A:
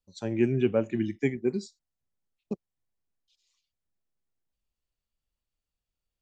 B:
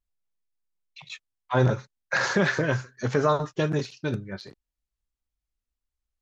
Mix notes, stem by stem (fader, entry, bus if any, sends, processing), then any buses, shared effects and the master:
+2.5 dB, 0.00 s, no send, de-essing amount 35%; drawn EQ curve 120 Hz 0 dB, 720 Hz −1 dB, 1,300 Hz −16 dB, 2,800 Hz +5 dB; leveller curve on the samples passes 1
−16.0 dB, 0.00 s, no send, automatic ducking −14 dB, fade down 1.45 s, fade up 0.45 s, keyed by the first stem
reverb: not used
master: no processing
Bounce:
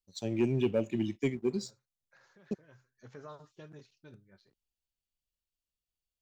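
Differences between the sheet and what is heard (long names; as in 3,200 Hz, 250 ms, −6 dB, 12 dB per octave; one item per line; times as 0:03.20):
stem A +2.5 dB → −6.0 dB
stem B −16.0 dB → −25.5 dB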